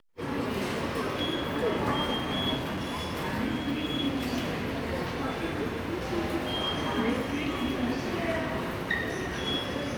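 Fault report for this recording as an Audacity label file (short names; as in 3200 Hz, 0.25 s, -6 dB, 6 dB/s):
2.560000	3.120000	clipped -29 dBFS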